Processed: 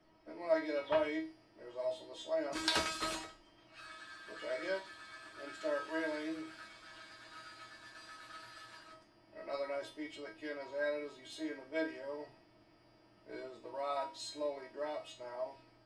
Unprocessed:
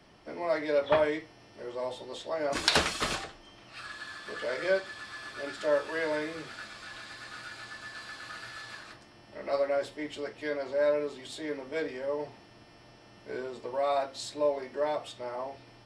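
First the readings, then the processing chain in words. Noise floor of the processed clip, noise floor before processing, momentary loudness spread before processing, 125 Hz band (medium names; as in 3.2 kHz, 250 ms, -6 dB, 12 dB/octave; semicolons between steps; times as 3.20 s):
-66 dBFS, -56 dBFS, 16 LU, -13.0 dB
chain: hum notches 50/100/150/200/250 Hz; feedback comb 320 Hz, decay 0.32 s, harmonics all, mix 90%; tape noise reduction on one side only decoder only; trim +6 dB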